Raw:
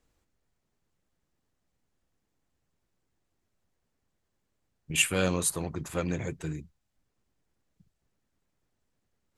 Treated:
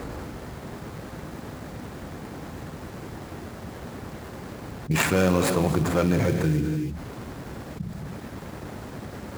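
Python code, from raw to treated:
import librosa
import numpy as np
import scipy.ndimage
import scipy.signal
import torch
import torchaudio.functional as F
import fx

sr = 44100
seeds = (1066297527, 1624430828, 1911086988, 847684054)

y = scipy.ndimage.median_filter(x, 15, mode='constant')
y = scipy.signal.sosfilt(scipy.signal.butter(2, 72.0, 'highpass', fs=sr, output='sos'), y)
y = fx.quant_companded(y, sr, bits=6, at=(4.91, 6.61))
y = fx.rev_gated(y, sr, seeds[0], gate_ms=320, shape='flat', drr_db=10.5)
y = fx.env_flatten(y, sr, amount_pct=70)
y = y * librosa.db_to_amplitude(6.0)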